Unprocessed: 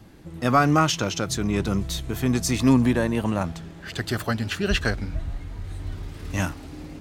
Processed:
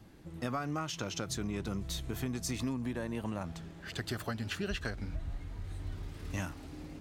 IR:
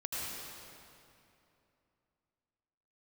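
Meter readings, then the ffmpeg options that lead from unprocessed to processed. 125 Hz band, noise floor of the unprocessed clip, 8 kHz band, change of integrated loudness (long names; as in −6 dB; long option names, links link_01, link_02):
−13.0 dB, −42 dBFS, −11.0 dB, −14.5 dB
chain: -af "acompressor=threshold=-24dB:ratio=12,volume=-7.5dB"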